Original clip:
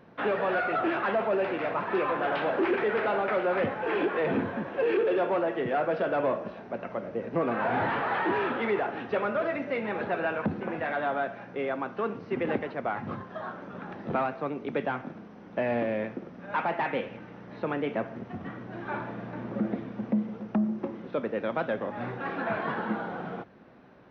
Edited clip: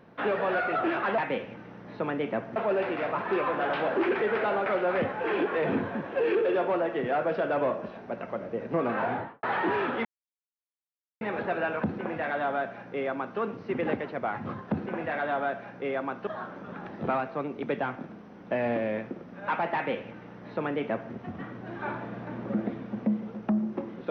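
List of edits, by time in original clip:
7.60–8.05 s: studio fade out
8.67–9.83 s: mute
10.45–12.01 s: copy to 13.33 s
16.81–18.19 s: copy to 1.18 s

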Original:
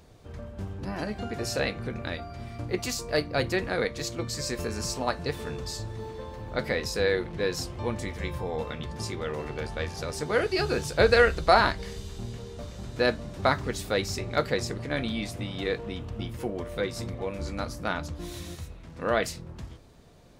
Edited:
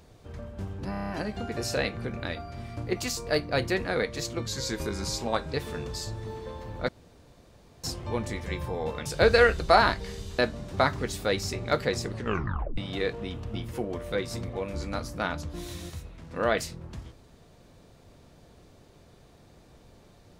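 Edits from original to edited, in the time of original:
0.91 s: stutter 0.03 s, 7 plays
4.29–5.26 s: speed 91%
6.61–7.56 s: room tone
8.78–10.84 s: delete
12.17–13.04 s: delete
14.79 s: tape stop 0.64 s

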